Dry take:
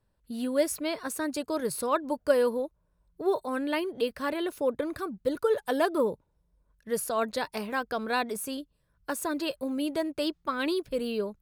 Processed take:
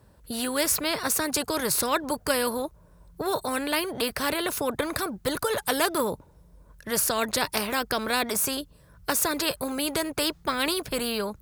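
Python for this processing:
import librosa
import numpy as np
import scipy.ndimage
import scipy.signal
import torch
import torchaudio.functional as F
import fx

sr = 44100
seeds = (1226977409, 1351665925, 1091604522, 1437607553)

y = scipy.signal.sosfilt(scipy.signal.butter(2, 47.0, 'highpass', fs=sr, output='sos'), x)
y = fx.peak_eq(y, sr, hz=2900.0, db=-4.5, octaves=1.5)
y = fx.spectral_comp(y, sr, ratio=2.0)
y = y * librosa.db_to_amplitude(5.0)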